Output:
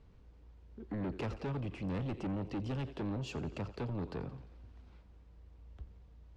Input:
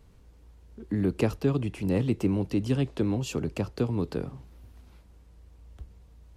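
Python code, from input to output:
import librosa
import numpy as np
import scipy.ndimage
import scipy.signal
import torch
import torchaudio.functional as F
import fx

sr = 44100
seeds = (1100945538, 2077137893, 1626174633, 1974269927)

y = fx.air_absorb(x, sr, metres=130.0)
y = fx.echo_thinned(y, sr, ms=87, feedback_pct=61, hz=420.0, wet_db=-15.5)
y = 10.0 ** (-29.5 / 20.0) * np.tanh(y / 10.0 ** (-29.5 / 20.0))
y = y * librosa.db_to_amplitude(-4.0)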